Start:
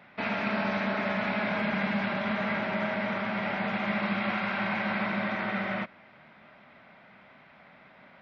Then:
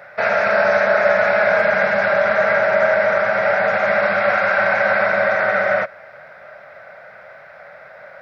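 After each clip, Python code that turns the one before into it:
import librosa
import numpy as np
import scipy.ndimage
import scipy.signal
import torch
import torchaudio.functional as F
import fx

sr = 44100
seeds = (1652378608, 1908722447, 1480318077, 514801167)

y = fx.curve_eq(x, sr, hz=(130.0, 270.0, 560.0, 1000.0, 1500.0, 3100.0, 5500.0), db=(0, -16, 15, 0, 12, -6, 9))
y = F.gain(torch.from_numpy(y), 6.5).numpy()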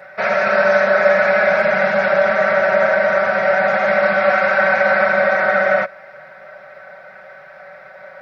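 y = x + 0.77 * np.pad(x, (int(5.3 * sr / 1000.0), 0))[:len(x)]
y = F.gain(torch.from_numpy(y), -1.0).numpy()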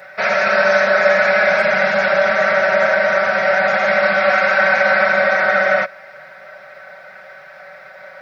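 y = fx.high_shelf(x, sr, hz=2400.0, db=10.5)
y = F.gain(torch.from_numpy(y), -1.5).numpy()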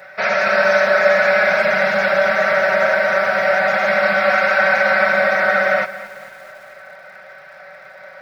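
y = fx.echo_crushed(x, sr, ms=224, feedback_pct=55, bits=6, wet_db=-15)
y = F.gain(torch.from_numpy(y), -1.0).numpy()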